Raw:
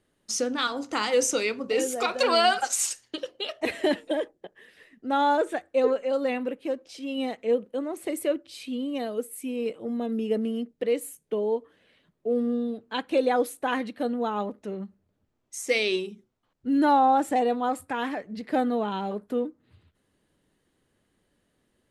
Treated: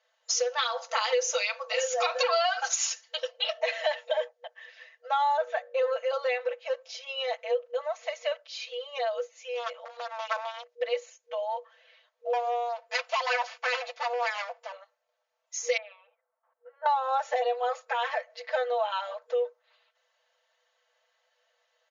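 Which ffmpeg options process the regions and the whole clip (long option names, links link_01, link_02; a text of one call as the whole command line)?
ffmpeg -i in.wav -filter_complex "[0:a]asettb=1/sr,asplit=3[link_01][link_02][link_03];[link_01]atrim=end=5.374[link_04];[link_02]atrim=start=5.37:end=5.91,asetpts=PTS-STARTPTS,afade=type=in:duration=0.004:curve=qsin,afade=type=out:start_time=0.536:duration=0.004:curve=qsin,lowpass=frequency=3500:poles=1,bandreject=frequency=48.31:width_type=h:width=4,bandreject=frequency=96.62:width_type=h:width=4,bandreject=frequency=144.93:width_type=h:width=4,bandreject=frequency=193.24:width_type=h:width=4,bandreject=frequency=241.55:width_type=h:width=4,bandreject=frequency=289.86:width_type=h:width=4,bandreject=frequency=338.17:width_type=h:width=4,bandreject=frequency=386.48:width_type=h:width=4,bandreject=frequency=434.79:width_type=h:width=4,bandreject=frequency=483.1:width_type=h:width=4,bandreject=frequency=531.41:width_type=h:width=4,bandreject=frequency=579.72:width_type=h:width=4[link_05];[link_03]atrim=start=5.906[link_06];[link_04][link_05]acrossfade=duration=0.004:curve1=hsin:curve2=qsin[link_07];[link_07][link_06]acrossfade=duration=0.004:curve1=qsin:curve2=hsin,asettb=1/sr,asplit=3[link_08][link_09][link_10];[link_08]atrim=end=9.544[link_11];[link_09]atrim=start=9.54:end=10.75,asetpts=PTS-STARTPTS,afade=type=in:duration=0.004:curve=qsin,afade=type=out:start_time=1.206:duration=0.004:curve=qsin,aeval=exprs='0.0531*(abs(mod(val(0)/0.0531+3,4)-2)-1)':channel_layout=same,equalizer=frequency=420:width_type=o:width=0.42:gain=-6,acompressor=mode=upward:threshold=-38dB:ratio=2.5:attack=3.2:release=140:knee=2.83:detection=peak[link_12];[link_10]atrim=start=10.746[link_13];[link_11][link_12]acrossfade=duration=0.004:curve1=hsin:curve2=qsin[link_14];[link_14][link_13]acrossfade=duration=0.004:curve1=qsin:curve2=hsin,asettb=1/sr,asplit=3[link_15][link_16][link_17];[link_15]atrim=end=12.334[link_18];[link_16]atrim=start=12.33:end=14.72,asetpts=PTS-STARTPTS,afade=type=in:duration=0.004:curve=qsin,afade=type=out:start_time=2.386:duration=0.004:curve=qsin,aeval=exprs='abs(val(0))':channel_layout=same,aecho=1:1:4.1:0.53,atrim=end_sample=105399[link_19];[link_17]atrim=start=14.716[link_20];[link_18][link_19]acrossfade=duration=0.004:curve1=hsin:curve2=qsin[link_21];[link_21][link_20]acrossfade=duration=0.004:curve1=qsin:curve2=hsin,asettb=1/sr,asplit=3[link_22][link_23][link_24];[link_22]atrim=end=15.774[link_25];[link_23]atrim=start=15.77:end=16.86,asetpts=PTS-STARTPTS,afade=type=in:duration=0.004:curve=qsin,afade=type=out:start_time=1.086:duration=0.004:curve=qsin,lowpass=frequency=1600:width=0.5412,lowpass=frequency=1600:width=1.3066,acompressor=threshold=-34dB:ratio=3:attack=3.2:release=140:knee=1:detection=peak[link_26];[link_24]atrim=start=16.856[link_27];[link_25][link_26]acrossfade=duration=0.004:curve1=hsin:curve2=qsin[link_28];[link_28][link_27]acrossfade=duration=0.004:curve1=qsin:curve2=hsin,afftfilt=real='re*between(b*sr/4096,480,7100)':imag='im*between(b*sr/4096,480,7100)':win_size=4096:overlap=0.75,aecho=1:1:4.5:0.99,acompressor=threshold=-25dB:ratio=5,volume=1.5dB" out.wav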